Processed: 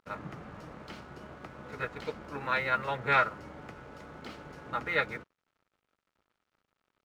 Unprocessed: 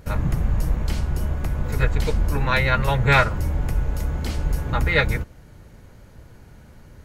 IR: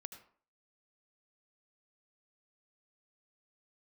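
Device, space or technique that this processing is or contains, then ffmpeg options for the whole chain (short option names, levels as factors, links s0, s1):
pocket radio on a weak battery: -af "highpass=250,lowpass=3700,aeval=exprs='sgn(val(0))*max(abs(val(0))-0.00355,0)':c=same,equalizer=f=1300:t=o:w=0.24:g=7,volume=0.355"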